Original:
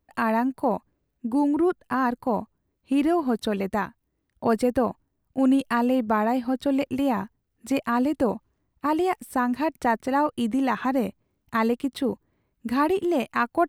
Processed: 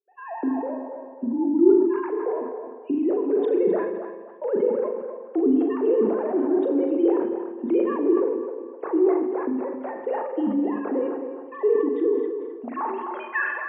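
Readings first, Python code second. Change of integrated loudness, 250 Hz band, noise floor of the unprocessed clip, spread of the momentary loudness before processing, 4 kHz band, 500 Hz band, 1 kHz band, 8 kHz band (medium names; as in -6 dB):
+1.0 dB, +0.5 dB, -77 dBFS, 7 LU, under -15 dB, +5.5 dB, -7.0 dB, under -35 dB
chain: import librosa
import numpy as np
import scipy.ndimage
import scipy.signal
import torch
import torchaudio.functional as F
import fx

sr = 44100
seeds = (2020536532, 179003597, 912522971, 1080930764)

p1 = fx.sine_speech(x, sr)
p2 = fx.recorder_agc(p1, sr, target_db=-13.0, rise_db_per_s=63.0, max_gain_db=30)
p3 = fx.peak_eq(p2, sr, hz=790.0, db=-5.0, octaves=2.3)
p4 = fx.hum_notches(p3, sr, base_hz=50, count=9)
p5 = fx.filter_sweep_bandpass(p4, sr, from_hz=390.0, to_hz=2500.0, start_s=12.28, end_s=13.62, q=4.1)
p6 = fx.doubler(p5, sr, ms=39.0, db=-7)
p7 = p6 + fx.echo_banded(p6, sr, ms=258, feedback_pct=40, hz=870.0, wet_db=-6.0, dry=0)
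p8 = fx.rev_spring(p7, sr, rt60_s=1.4, pass_ms=(38, 50), chirp_ms=70, drr_db=5.0)
p9 = fx.sustainer(p8, sr, db_per_s=42.0)
y = p9 * librosa.db_to_amplitude(4.5)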